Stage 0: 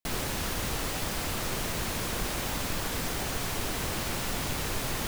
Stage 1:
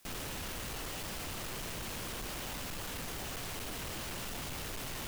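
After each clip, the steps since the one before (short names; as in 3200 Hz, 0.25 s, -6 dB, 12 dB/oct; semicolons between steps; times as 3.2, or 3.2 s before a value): bell 2900 Hz +3.5 dB 0.28 oct; in parallel at -8 dB: requantised 8-bit, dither triangular; on the sum: hard clip -31.5 dBFS, distortion -7 dB; gain -7 dB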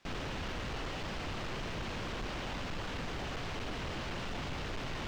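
air absorption 170 m; gain +4 dB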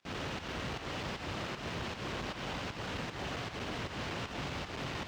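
HPF 71 Hz 12 dB/oct; pump 155 bpm, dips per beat 1, -14 dB, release 0.161 s; split-band echo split 710 Hz, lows 0.394 s, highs 88 ms, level -9 dB; gain +1 dB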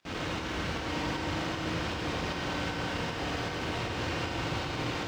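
reverb RT60 3.7 s, pre-delay 3 ms, DRR -0.5 dB; gain +2.5 dB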